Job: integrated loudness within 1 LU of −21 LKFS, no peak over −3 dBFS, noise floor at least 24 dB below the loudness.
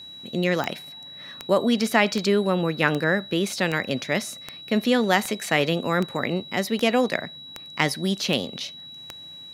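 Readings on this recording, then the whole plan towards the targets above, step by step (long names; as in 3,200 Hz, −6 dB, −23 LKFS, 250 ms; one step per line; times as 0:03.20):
number of clicks 12; interfering tone 3,900 Hz; level of the tone −39 dBFS; integrated loudness −24.0 LKFS; sample peak −3.5 dBFS; target loudness −21.0 LKFS
→ click removal
notch filter 3,900 Hz, Q 30
level +3 dB
brickwall limiter −3 dBFS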